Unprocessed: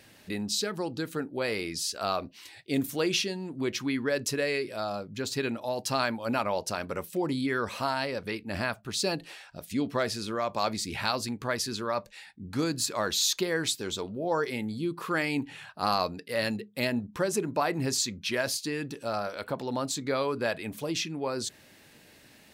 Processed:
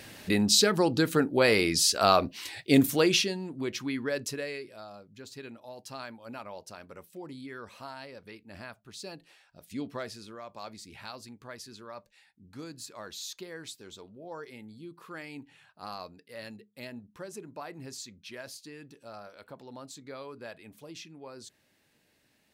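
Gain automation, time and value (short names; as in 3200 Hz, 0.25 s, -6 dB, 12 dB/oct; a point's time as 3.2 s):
2.72 s +8 dB
3.66 s -3 dB
4.17 s -3 dB
4.88 s -13.5 dB
9.47 s -13.5 dB
9.8 s -6.5 dB
10.42 s -14 dB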